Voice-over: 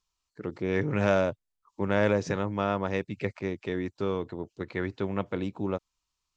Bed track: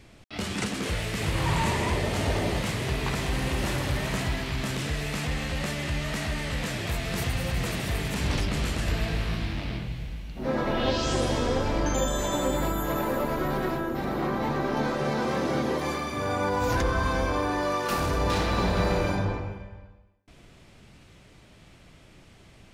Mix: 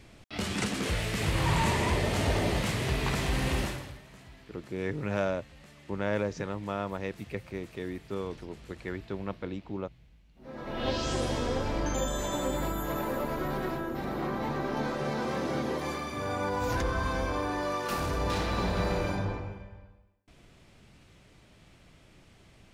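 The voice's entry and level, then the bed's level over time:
4.10 s, −5.5 dB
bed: 0:03.59 −1 dB
0:04.04 −23 dB
0:10.31 −23 dB
0:10.88 −4.5 dB

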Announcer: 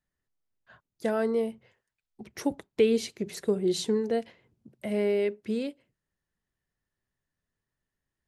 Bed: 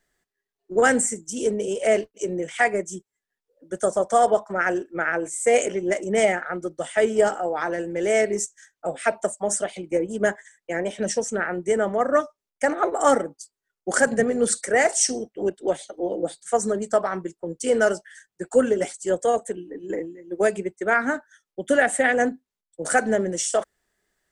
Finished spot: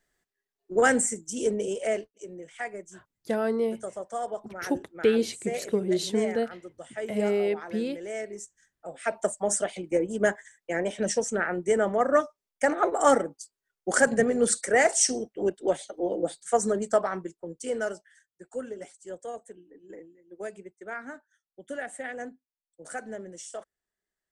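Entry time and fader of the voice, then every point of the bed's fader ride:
2.25 s, +0.5 dB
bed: 0:01.66 −3 dB
0:02.23 −14.5 dB
0:08.79 −14.5 dB
0:09.26 −2 dB
0:16.91 −2 dB
0:18.45 −16.5 dB

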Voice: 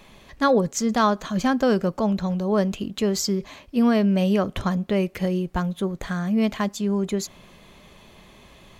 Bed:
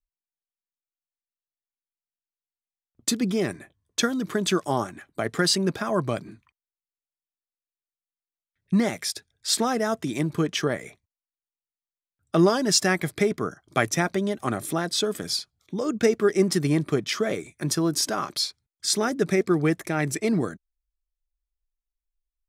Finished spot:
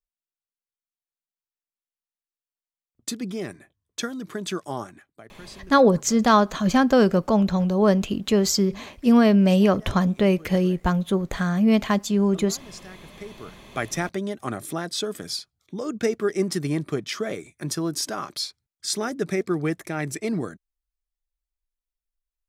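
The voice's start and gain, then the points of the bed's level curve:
5.30 s, +3.0 dB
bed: 0:04.96 −6 dB
0:05.30 −22.5 dB
0:12.99 −22.5 dB
0:13.91 −3 dB

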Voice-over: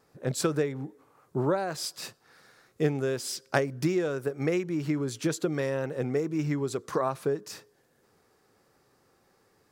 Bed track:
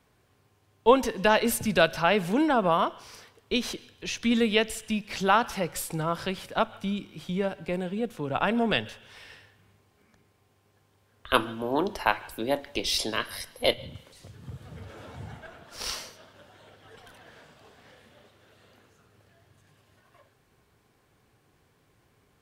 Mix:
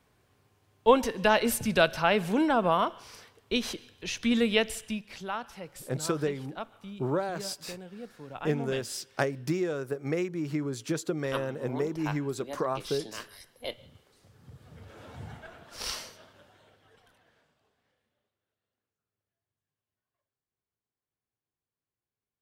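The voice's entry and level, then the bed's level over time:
5.65 s, −2.5 dB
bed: 0:04.79 −1.5 dB
0:05.27 −13 dB
0:14.19 −13 dB
0:15.21 −1.5 dB
0:16.19 −1.5 dB
0:18.61 −31 dB

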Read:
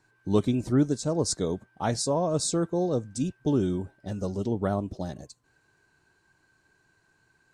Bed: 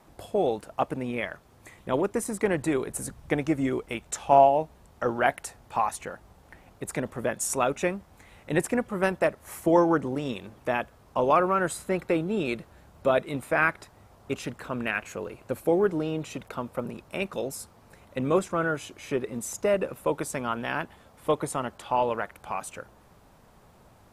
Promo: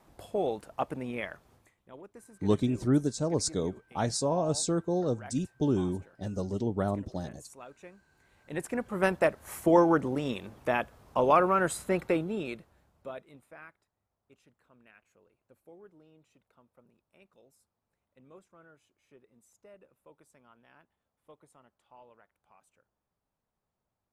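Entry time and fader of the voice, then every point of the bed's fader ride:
2.15 s, −2.5 dB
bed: 0:01.55 −5 dB
0:01.75 −23 dB
0:07.91 −23 dB
0:09.05 −1 dB
0:12.05 −1 dB
0:13.85 −30.5 dB

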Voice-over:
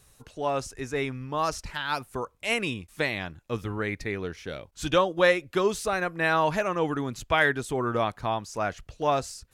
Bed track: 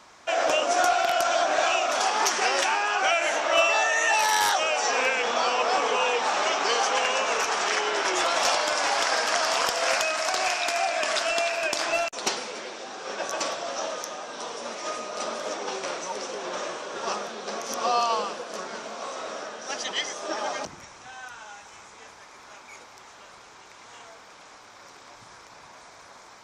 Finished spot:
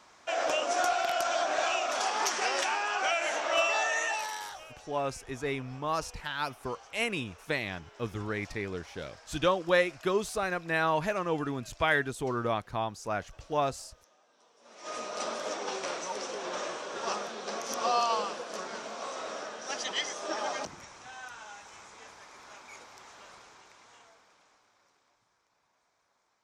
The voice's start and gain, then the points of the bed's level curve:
4.50 s, −4.0 dB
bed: 0:03.97 −6 dB
0:04.88 −29.5 dB
0:14.55 −29.5 dB
0:14.97 −3.5 dB
0:23.32 −3.5 dB
0:25.33 −26.5 dB

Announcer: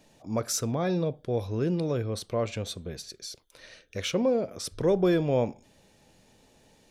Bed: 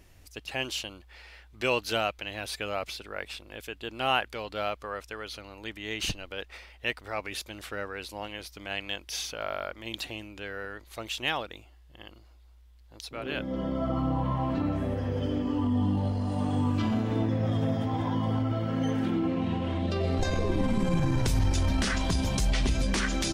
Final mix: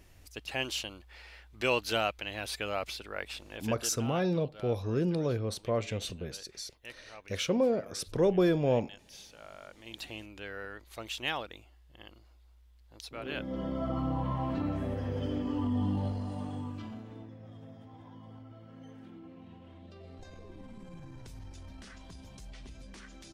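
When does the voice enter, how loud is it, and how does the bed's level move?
3.35 s, −2.0 dB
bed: 0:03.80 −1.5 dB
0:04.04 −16.5 dB
0:09.54 −16.5 dB
0:10.15 −4 dB
0:16.05 −4 dB
0:17.37 −22 dB

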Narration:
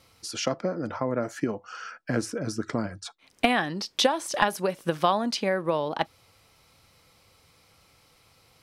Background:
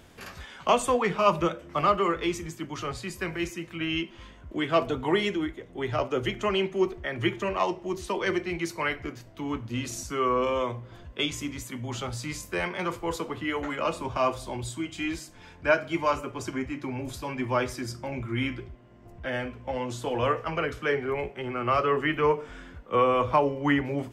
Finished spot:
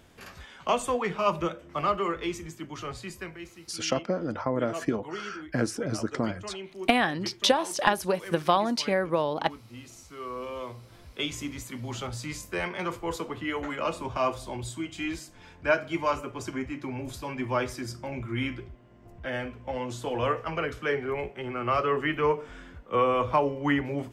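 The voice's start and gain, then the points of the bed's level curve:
3.45 s, 0.0 dB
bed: 0:03.13 −3.5 dB
0:03.47 −13.5 dB
0:10.15 −13.5 dB
0:11.38 −1.5 dB

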